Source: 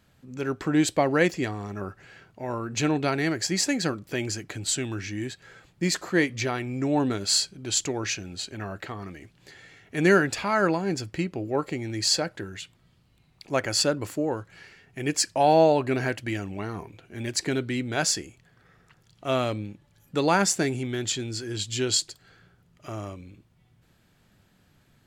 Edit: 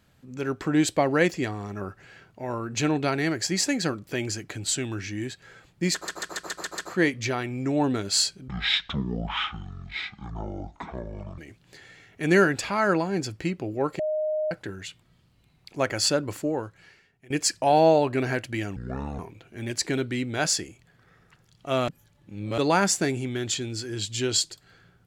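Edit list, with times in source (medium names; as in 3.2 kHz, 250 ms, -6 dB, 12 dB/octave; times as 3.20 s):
5.94 s: stutter 0.14 s, 7 plays
7.64–9.12 s: speed 51%
11.73–12.25 s: bleep 617 Hz -23.5 dBFS
14.21–15.04 s: fade out, to -21.5 dB
16.50–16.77 s: speed 63%
19.46–20.16 s: reverse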